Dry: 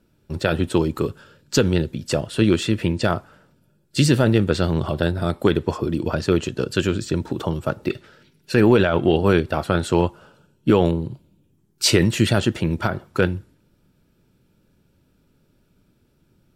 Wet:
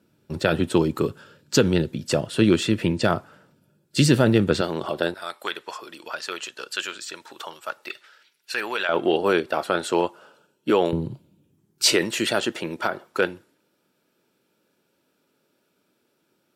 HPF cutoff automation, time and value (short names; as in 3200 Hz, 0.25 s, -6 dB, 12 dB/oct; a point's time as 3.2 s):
120 Hz
from 4.61 s 340 Hz
from 5.14 s 1100 Hz
from 8.89 s 370 Hz
from 10.93 s 110 Hz
from 11.93 s 390 Hz